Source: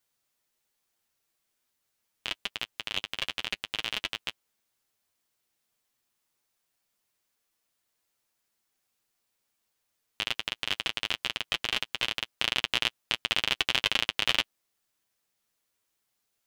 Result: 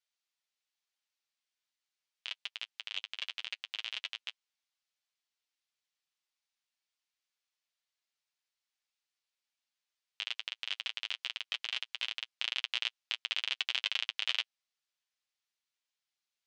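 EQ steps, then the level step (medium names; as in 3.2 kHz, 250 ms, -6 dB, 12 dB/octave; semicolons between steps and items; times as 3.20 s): band-pass 620–4700 Hz; tilt shelf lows -6.5 dB, about 930 Hz; peaking EQ 1.3 kHz -4.5 dB 2 oct; -9.0 dB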